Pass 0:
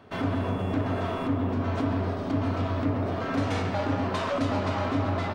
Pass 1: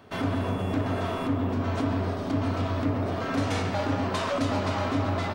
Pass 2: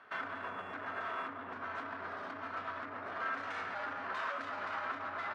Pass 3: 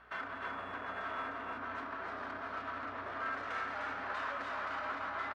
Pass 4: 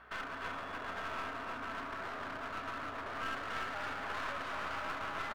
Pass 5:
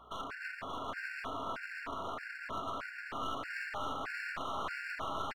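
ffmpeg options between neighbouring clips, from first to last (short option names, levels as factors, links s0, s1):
-af "highshelf=f=5400:g=9"
-af "alimiter=level_in=1.19:limit=0.0631:level=0:latency=1:release=20,volume=0.841,bandpass=f=1500:t=q:w=2.4:csg=0,volume=1.58"
-filter_complex "[0:a]asplit=2[s0][s1];[s1]asoftclip=type=tanh:threshold=0.015,volume=0.282[s2];[s0][s2]amix=inputs=2:normalize=0,aeval=exprs='val(0)+0.000501*(sin(2*PI*60*n/s)+sin(2*PI*2*60*n/s)/2+sin(2*PI*3*60*n/s)/3+sin(2*PI*4*60*n/s)/4+sin(2*PI*5*60*n/s)/5)':c=same,aecho=1:1:303:0.668,volume=0.708"
-af "aeval=exprs='clip(val(0),-1,0.00562)':c=same,volume=1.26"
-af "aecho=1:1:578:0.473,afftfilt=real='re*gt(sin(2*PI*1.6*pts/sr)*(1-2*mod(floor(b*sr/1024/1400),2)),0)':imag='im*gt(sin(2*PI*1.6*pts/sr)*(1-2*mod(floor(b*sr/1024/1400),2)),0)':win_size=1024:overlap=0.75,volume=1.33"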